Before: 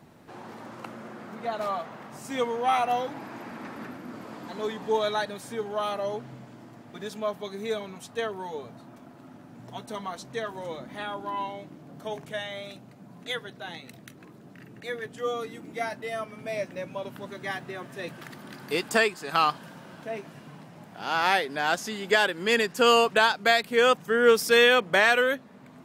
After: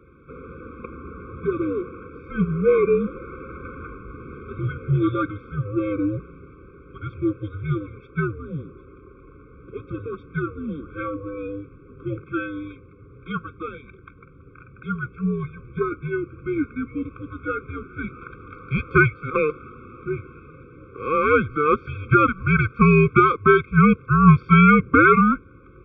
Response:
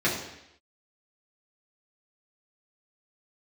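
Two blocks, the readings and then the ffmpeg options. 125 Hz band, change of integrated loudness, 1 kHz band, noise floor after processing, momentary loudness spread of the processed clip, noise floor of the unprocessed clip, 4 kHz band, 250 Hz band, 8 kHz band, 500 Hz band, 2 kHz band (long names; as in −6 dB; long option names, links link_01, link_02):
+22.5 dB, +5.5 dB, +4.5 dB, −48 dBFS, 23 LU, −50 dBFS, −15.5 dB, +14.5 dB, below −40 dB, +2.5 dB, +2.5 dB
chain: -af "highpass=frequency=190:width_type=q:width=0.5412,highpass=frequency=190:width_type=q:width=1.307,lowpass=frequency=2600:width_type=q:width=0.5176,lowpass=frequency=2600:width_type=q:width=0.7071,lowpass=frequency=2600:width_type=q:width=1.932,afreqshift=-300,highpass=frequency=120:poles=1,afftfilt=real='re*eq(mod(floor(b*sr/1024/530),2),0)':imag='im*eq(mod(floor(b*sr/1024/530),2),0)':win_size=1024:overlap=0.75,volume=8.5dB"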